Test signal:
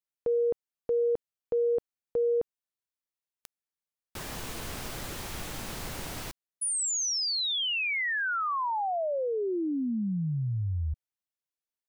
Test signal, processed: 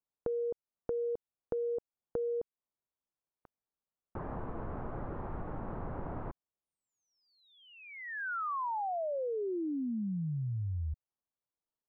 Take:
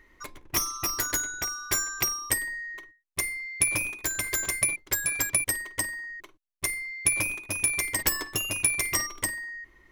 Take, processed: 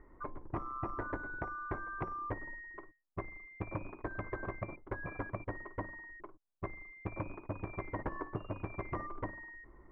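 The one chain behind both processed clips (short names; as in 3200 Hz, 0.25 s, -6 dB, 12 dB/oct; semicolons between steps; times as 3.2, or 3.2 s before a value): LPF 1200 Hz 24 dB/oct; compressor 4:1, threshold -38 dBFS; gain +3 dB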